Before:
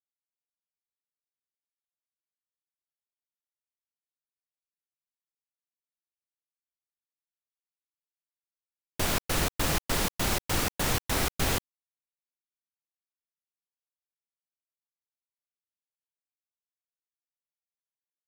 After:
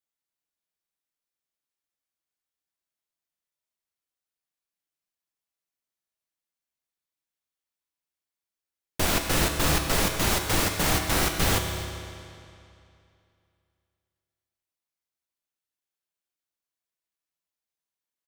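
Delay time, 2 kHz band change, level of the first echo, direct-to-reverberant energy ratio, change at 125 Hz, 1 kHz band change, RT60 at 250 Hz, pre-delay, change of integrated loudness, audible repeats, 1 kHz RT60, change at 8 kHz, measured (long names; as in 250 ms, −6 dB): 259 ms, +4.5 dB, −17.5 dB, 3.5 dB, +4.5 dB, +4.5 dB, 2.6 s, 6 ms, +4.0 dB, 1, 2.6 s, +4.5 dB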